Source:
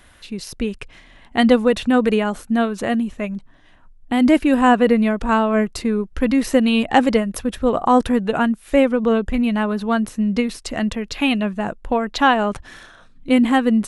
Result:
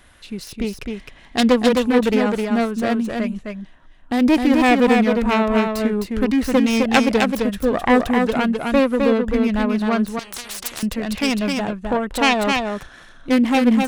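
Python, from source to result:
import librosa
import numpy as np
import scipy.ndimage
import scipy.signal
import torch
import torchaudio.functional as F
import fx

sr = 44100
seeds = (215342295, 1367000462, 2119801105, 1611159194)

p1 = fx.self_delay(x, sr, depth_ms=0.32)
p2 = p1 + fx.echo_single(p1, sr, ms=260, db=-4.0, dry=0)
p3 = fx.spectral_comp(p2, sr, ratio=10.0, at=(10.19, 10.83))
y = F.gain(torch.from_numpy(p3), -1.0).numpy()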